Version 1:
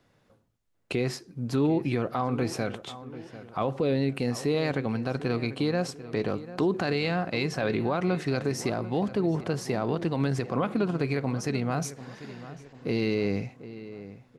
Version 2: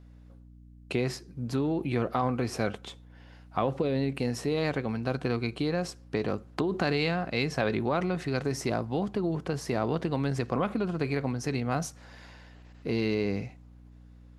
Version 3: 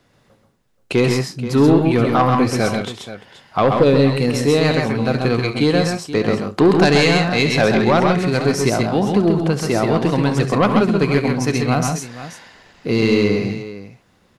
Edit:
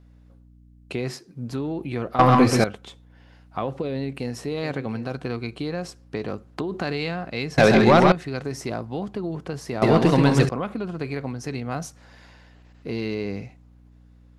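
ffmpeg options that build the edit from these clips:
-filter_complex "[0:a]asplit=2[a][b];[2:a]asplit=3[c][d][e];[1:a]asplit=6[f][g][h][i][j][k];[f]atrim=end=1.032[l];[a]atrim=start=1.028:end=1.492[m];[g]atrim=start=1.488:end=2.192[n];[c]atrim=start=2.188:end=2.642[o];[h]atrim=start=2.638:end=4.632[p];[b]atrim=start=4.628:end=5.122[q];[i]atrim=start=5.118:end=7.582[r];[d]atrim=start=7.578:end=8.122[s];[j]atrim=start=8.118:end=9.822[t];[e]atrim=start=9.818:end=10.492[u];[k]atrim=start=10.488[v];[l][m]acrossfade=d=0.004:c1=hsin:c2=hsin[w];[w][n]acrossfade=d=0.004:c1=hsin:c2=hsin[x];[x][o]acrossfade=d=0.004:c1=hsin:c2=hsin[y];[y][p]acrossfade=d=0.004:c1=hsin:c2=hsin[z];[z][q]acrossfade=d=0.004:c1=hsin:c2=hsin[aa];[aa][r]acrossfade=d=0.004:c1=hsin:c2=hsin[ab];[ab][s]acrossfade=d=0.004:c1=hsin:c2=hsin[ac];[ac][t]acrossfade=d=0.004:c1=hsin:c2=hsin[ad];[ad][u]acrossfade=d=0.004:c1=hsin:c2=hsin[ae];[ae][v]acrossfade=d=0.004:c1=hsin:c2=hsin"

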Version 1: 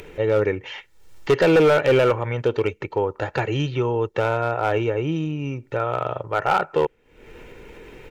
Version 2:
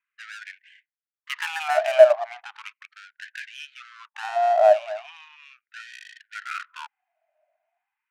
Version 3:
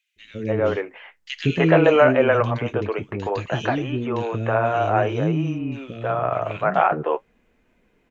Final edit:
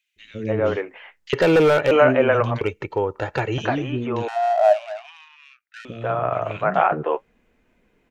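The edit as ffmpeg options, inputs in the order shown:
-filter_complex "[0:a]asplit=2[a][b];[2:a]asplit=4[c][d][e][f];[c]atrim=end=1.332[g];[a]atrim=start=1.328:end=1.912[h];[d]atrim=start=1.908:end=2.612[i];[b]atrim=start=2.608:end=3.582[j];[e]atrim=start=3.578:end=4.282[k];[1:a]atrim=start=4.278:end=5.852[l];[f]atrim=start=5.848[m];[g][h]acrossfade=d=0.004:c1=hsin:c2=hsin[n];[n][i]acrossfade=d=0.004:c1=hsin:c2=hsin[o];[o][j]acrossfade=d=0.004:c1=hsin:c2=hsin[p];[p][k]acrossfade=d=0.004:c1=hsin:c2=hsin[q];[q][l]acrossfade=d=0.004:c1=hsin:c2=hsin[r];[r][m]acrossfade=d=0.004:c1=hsin:c2=hsin"

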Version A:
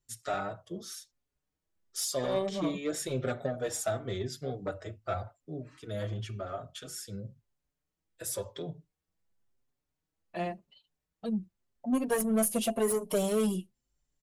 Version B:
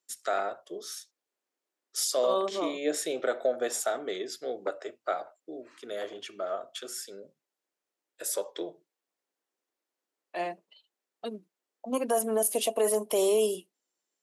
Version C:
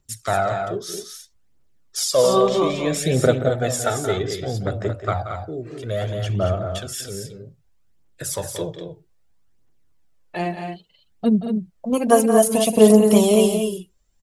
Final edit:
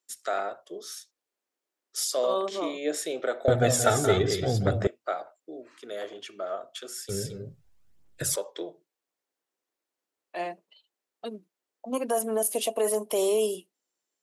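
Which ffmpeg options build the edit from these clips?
-filter_complex "[2:a]asplit=2[a][b];[1:a]asplit=3[c][d][e];[c]atrim=end=3.482[f];[a]atrim=start=3.478:end=4.872[g];[d]atrim=start=4.868:end=7.092[h];[b]atrim=start=7.088:end=8.362[i];[e]atrim=start=8.358[j];[f][g]acrossfade=d=0.004:c1=hsin:c2=hsin[k];[k][h]acrossfade=d=0.004:c1=hsin:c2=hsin[l];[l][i]acrossfade=d=0.004:c1=hsin:c2=hsin[m];[m][j]acrossfade=d=0.004:c1=hsin:c2=hsin"

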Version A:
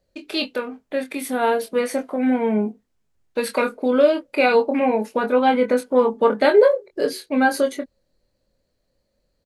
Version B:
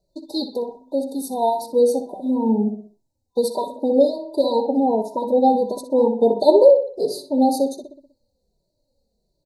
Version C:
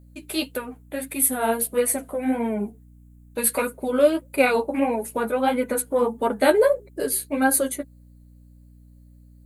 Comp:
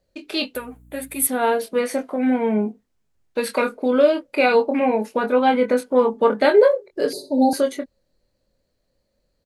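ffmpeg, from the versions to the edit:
-filter_complex "[0:a]asplit=3[a][b][c];[a]atrim=end=0.552[d];[2:a]atrim=start=0.548:end=1.272[e];[b]atrim=start=1.268:end=7.132[f];[1:a]atrim=start=7.128:end=7.532[g];[c]atrim=start=7.528[h];[d][e]acrossfade=d=0.004:c1=hsin:c2=hsin[i];[i][f]acrossfade=d=0.004:c1=hsin:c2=hsin[j];[j][g]acrossfade=d=0.004:c1=hsin:c2=hsin[k];[k][h]acrossfade=d=0.004:c1=hsin:c2=hsin"

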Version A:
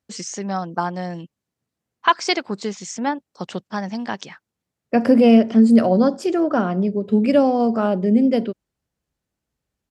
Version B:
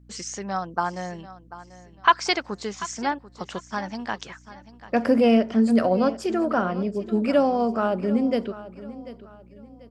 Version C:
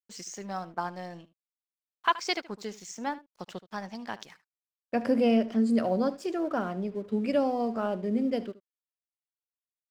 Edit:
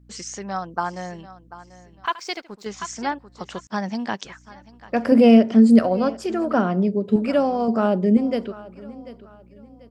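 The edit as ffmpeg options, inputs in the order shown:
-filter_complex "[0:a]asplit=4[a][b][c][d];[1:a]asplit=6[e][f][g][h][i][j];[e]atrim=end=2.062[k];[2:a]atrim=start=2.058:end=2.662[l];[f]atrim=start=2.658:end=3.672[m];[a]atrim=start=3.668:end=4.252[n];[g]atrim=start=4.248:end=5.122[o];[b]atrim=start=5.118:end=5.792[p];[h]atrim=start=5.788:end=6.542[q];[c]atrim=start=6.538:end=7.162[r];[i]atrim=start=7.158:end=7.682[s];[d]atrim=start=7.678:end=8.172[t];[j]atrim=start=8.168[u];[k][l]acrossfade=d=0.004:c1=hsin:c2=hsin[v];[v][m]acrossfade=d=0.004:c1=hsin:c2=hsin[w];[w][n]acrossfade=d=0.004:c1=hsin:c2=hsin[x];[x][o]acrossfade=d=0.004:c1=hsin:c2=hsin[y];[y][p]acrossfade=d=0.004:c1=hsin:c2=hsin[z];[z][q]acrossfade=d=0.004:c1=hsin:c2=hsin[aa];[aa][r]acrossfade=d=0.004:c1=hsin:c2=hsin[ab];[ab][s]acrossfade=d=0.004:c1=hsin:c2=hsin[ac];[ac][t]acrossfade=d=0.004:c1=hsin:c2=hsin[ad];[ad][u]acrossfade=d=0.004:c1=hsin:c2=hsin"

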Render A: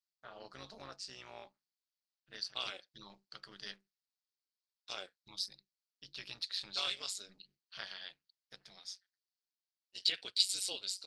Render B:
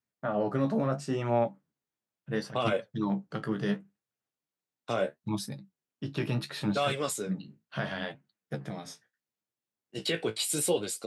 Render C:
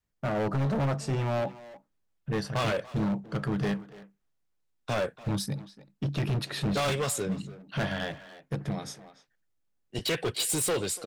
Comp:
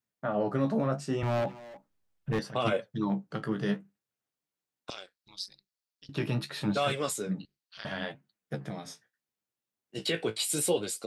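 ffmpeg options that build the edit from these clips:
-filter_complex "[0:a]asplit=2[a][b];[1:a]asplit=4[c][d][e][f];[c]atrim=end=1.232[g];[2:a]atrim=start=1.228:end=2.392[h];[d]atrim=start=2.388:end=4.902[i];[a]atrim=start=4.898:end=6.092[j];[e]atrim=start=6.088:end=7.452[k];[b]atrim=start=7.448:end=7.852[l];[f]atrim=start=7.848[m];[g][h]acrossfade=d=0.004:c1=hsin:c2=hsin[n];[n][i]acrossfade=d=0.004:c1=hsin:c2=hsin[o];[o][j]acrossfade=d=0.004:c1=hsin:c2=hsin[p];[p][k]acrossfade=d=0.004:c1=hsin:c2=hsin[q];[q][l]acrossfade=d=0.004:c1=hsin:c2=hsin[r];[r][m]acrossfade=d=0.004:c1=hsin:c2=hsin"

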